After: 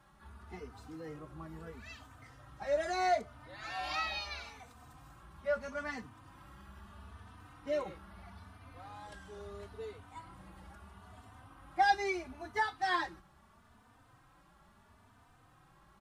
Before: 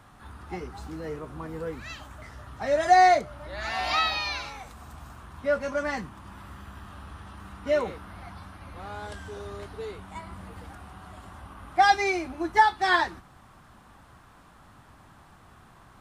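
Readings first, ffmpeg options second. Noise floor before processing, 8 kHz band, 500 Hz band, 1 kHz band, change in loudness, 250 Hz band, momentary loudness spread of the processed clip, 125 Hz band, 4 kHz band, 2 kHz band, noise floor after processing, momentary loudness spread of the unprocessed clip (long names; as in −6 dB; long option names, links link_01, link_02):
−54 dBFS, −10.0 dB, −9.0 dB, −11.5 dB, −11.0 dB, −10.5 dB, 24 LU, −10.0 dB, −10.5 dB, −10.0 dB, −64 dBFS, 24 LU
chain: -filter_complex "[0:a]asplit=2[link_01][link_02];[link_02]adelay=3.2,afreqshift=0.76[link_03];[link_01][link_03]amix=inputs=2:normalize=1,volume=-7dB"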